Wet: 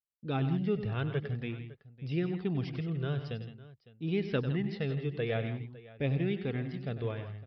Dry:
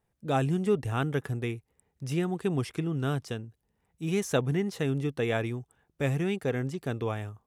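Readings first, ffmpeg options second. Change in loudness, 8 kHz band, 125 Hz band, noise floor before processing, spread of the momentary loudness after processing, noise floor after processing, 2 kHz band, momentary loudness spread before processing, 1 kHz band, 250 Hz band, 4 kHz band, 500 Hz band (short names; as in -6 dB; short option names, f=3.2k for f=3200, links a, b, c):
-3.5 dB, under -30 dB, -2.0 dB, -78 dBFS, 10 LU, -72 dBFS, -5.0 dB, 9 LU, -8.5 dB, -3.0 dB, -4.0 dB, -5.0 dB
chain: -filter_complex "[0:a]equalizer=f=1k:w=1.6:g=-8,agate=range=-33dB:threshold=-55dB:ratio=3:detection=peak,flanger=delay=0.2:depth=1.8:regen=-40:speed=0.49:shape=triangular,asplit=2[a][b];[b]aecho=0:1:97|164|165|556:0.266|0.251|0.119|0.112[c];[a][c]amix=inputs=2:normalize=0,aresample=11025,aresample=44100"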